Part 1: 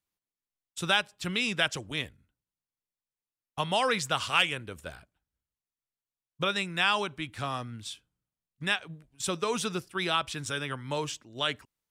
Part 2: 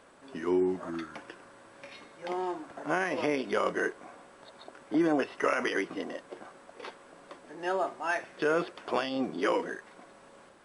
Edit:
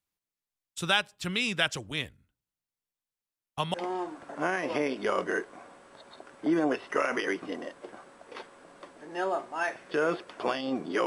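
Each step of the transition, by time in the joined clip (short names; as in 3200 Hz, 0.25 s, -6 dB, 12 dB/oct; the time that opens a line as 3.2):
part 1
3.74 switch to part 2 from 2.22 s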